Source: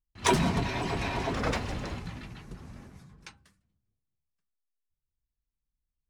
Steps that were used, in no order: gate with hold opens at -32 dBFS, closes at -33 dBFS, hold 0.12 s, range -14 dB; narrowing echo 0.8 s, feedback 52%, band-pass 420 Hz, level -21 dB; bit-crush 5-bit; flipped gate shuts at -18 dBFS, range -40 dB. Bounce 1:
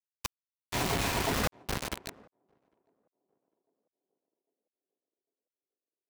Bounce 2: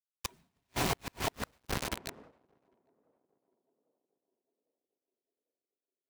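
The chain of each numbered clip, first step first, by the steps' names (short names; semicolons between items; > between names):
flipped gate > bit-crush > narrowing echo > gate with hold; bit-crush > narrowing echo > flipped gate > gate with hold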